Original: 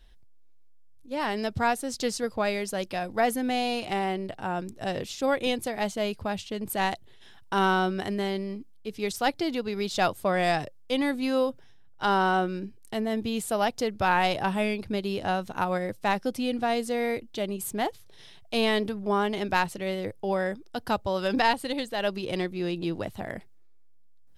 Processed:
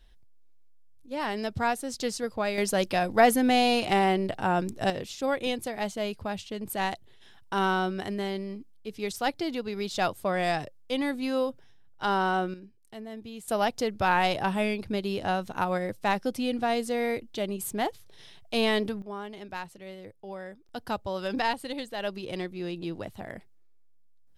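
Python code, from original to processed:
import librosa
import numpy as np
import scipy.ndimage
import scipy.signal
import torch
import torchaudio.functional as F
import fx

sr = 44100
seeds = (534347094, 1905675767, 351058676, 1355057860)

y = fx.gain(x, sr, db=fx.steps((0.0, -2.0), (2.58, 5.0), (4.9, -2.5), (12.54, -12.0), (13.48, -0.5), (19.02, -12.5), (20.69, -4.5)))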